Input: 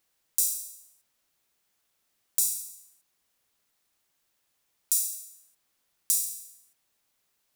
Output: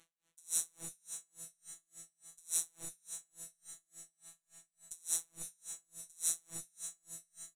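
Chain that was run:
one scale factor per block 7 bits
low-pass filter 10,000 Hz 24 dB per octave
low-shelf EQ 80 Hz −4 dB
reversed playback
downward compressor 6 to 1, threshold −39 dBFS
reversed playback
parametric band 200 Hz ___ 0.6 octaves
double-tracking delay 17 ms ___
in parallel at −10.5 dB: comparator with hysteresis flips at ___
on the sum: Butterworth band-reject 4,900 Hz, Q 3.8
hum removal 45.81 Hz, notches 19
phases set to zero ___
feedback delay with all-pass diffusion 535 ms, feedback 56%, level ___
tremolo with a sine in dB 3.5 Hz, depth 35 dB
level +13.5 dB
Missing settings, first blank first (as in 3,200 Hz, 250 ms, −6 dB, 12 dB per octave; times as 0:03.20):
+9.5 dB, −14 dB, −50.5 dBFS, 166 Hz, −10 dB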